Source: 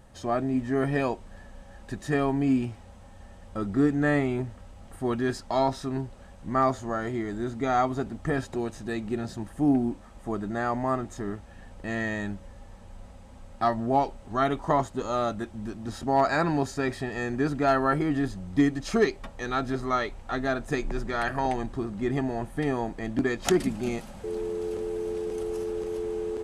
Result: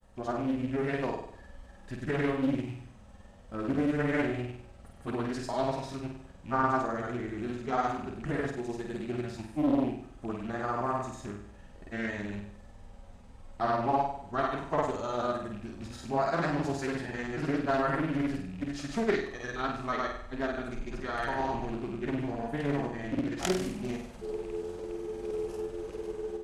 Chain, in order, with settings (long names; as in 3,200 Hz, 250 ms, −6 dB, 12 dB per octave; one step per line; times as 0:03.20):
loose part that buzzes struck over −34 dBFS, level −36 dBFS
granular cloud, pitch spread up and down by 0 semitones
on a send: flutter between parallel walls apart 8.4 metres, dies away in 0.63 s
on the sum: highs frequency-modulated by the lows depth 0.52 ms
level −5 dB